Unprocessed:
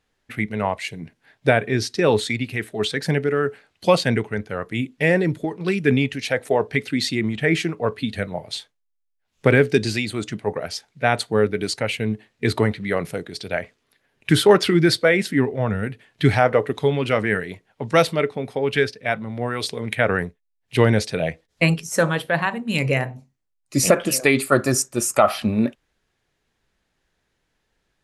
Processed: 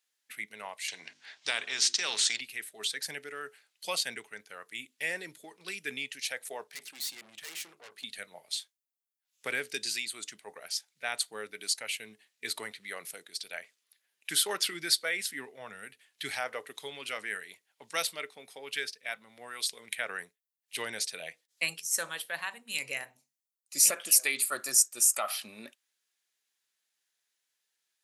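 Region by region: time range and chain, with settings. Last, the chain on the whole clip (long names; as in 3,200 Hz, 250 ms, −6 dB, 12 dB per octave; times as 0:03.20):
0:00.88–0:02.41: low-pass filter 6,400 Hz 24 dB per octave + mains-hum notches 50/100/150/200/250/300/350 Hz + every bin compressed towards the loudest bin 2 to 1
0:06.64–0:08.04: mains-hum notches 50/100/150/200/250/300/350/400 Hz + tube saturation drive 29 dB, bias 0.6
whole clip: high-pass filter 130 Hz; first difference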